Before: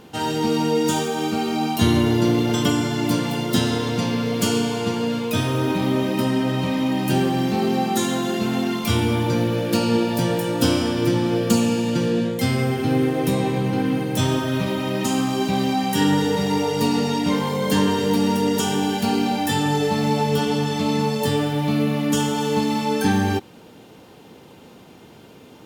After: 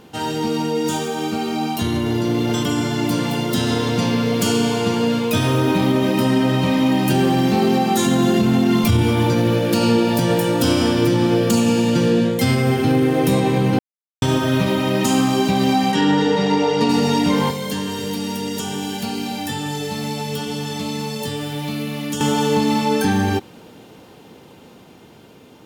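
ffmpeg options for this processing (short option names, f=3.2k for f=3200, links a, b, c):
-filter_complex "[0:a]asettb=1/sr,asplit=3[a][b][c];[a]atrim=end=8.064[d];[b]atrim=start=8.06:end=9.03,asetpts=PTS-STARTPTS,afade=t=in:d=0.004:c=qsin,afade=t=out:st=0.966:d=0.004:c=qsin,lowshelf=f=240:g=11[e];[c]atrim=start=9.026[f];[d][e]acrossfade=d=0.004:c1=hsin:c2=qsin[g];[g][f]acrossfade=d=0.004:c1=qsin:c2=hsin,asplit=3[h][i][j];[h]afade=t=out:st=15.91:d=0.02[k];[i]highpass=170,lowpass=4.8k,afade=t=in:st=15.91:d=0.02,afade=t=out:st=16.88:d=0.02[l];[j]afade=t=in:st=16.88:d=0.02[m];[k][l][m]amix=inputs=3:normalize=0,asettb=1/sr,asplit=3[n][o][p];[n]atrim=end=17.504[q];[o]atrim=start=17.5:end=22.21,asetpts=PTS-STARTPTS,afade=t=in:d=0.004:c=qsin,afade=t=out:st=4.706:d=0.004:c=qsin,acrossover=split=220|2100|7200[r][s][t][u];[r]acompressor=threshold=-37dB:ratio=3[v];[s]acompressor=threshold=-36dB:ratio=3[w];[t]acompressor=threshold=-39dB:ratio=3[x];[u]acompressor=threshold=-43dB:ratio=3[y];[v][w][x][y]amix=inputs=4:normalize=0[z];[p]atrim=start=22.206[aa];[q][z]acrossfade=d=0.004:c1=hsin:c2=qsin[ab];[ab][aa]acrossfade=d=0.004:c1=qsin:c2=hsin,asplit=3[ac][ad][ae];[ac]atrim=end=13.79,asetpts=PTS-STARTPTS,afade=t=out:st=13.786:d=0.004:c=hsin[af];[ad]atrim=start=13.79:end=14.22,asetpts=PTS-STARTPTS,volume=0[ag];[ae]atrim=start=14.22,asetpts=PTS-STARTPTS,afade=t=in:d=0.004:c=hsin[ah];[af][ag][ah]concat=n=3:v=0:a=1,alimiter=limit=-12.5dB:level=0:latency=1:release=52,dynaudnorm=f=970:g=7:m=5dB"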